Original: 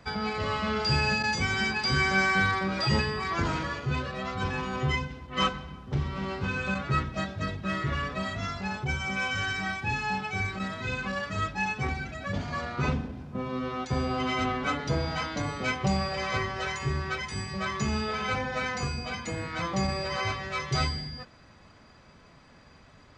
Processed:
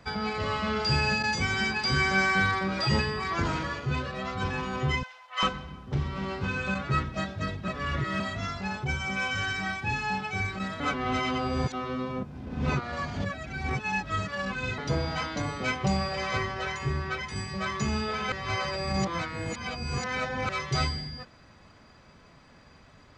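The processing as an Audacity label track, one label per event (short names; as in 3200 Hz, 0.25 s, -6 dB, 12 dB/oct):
5.030000	5.430000	inverse Chebyshev high-pass stop band from 340 Hz
7.680000	8.200000	reverse
10.800000	14.780000	reverse
16.540000	17.360000	high shelf 6300 Hz -7.5 dB
18.320000	20.490000	reverse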